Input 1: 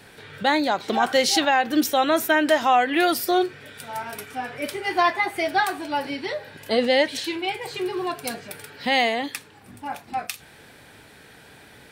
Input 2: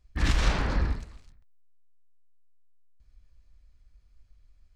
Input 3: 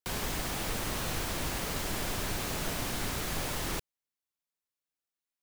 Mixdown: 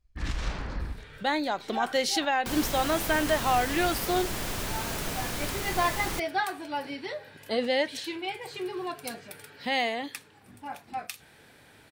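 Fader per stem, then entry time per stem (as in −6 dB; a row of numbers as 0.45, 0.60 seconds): −7.0, −7.5, +1.0 decibels; 0.80, 0.00, 2.40 seconds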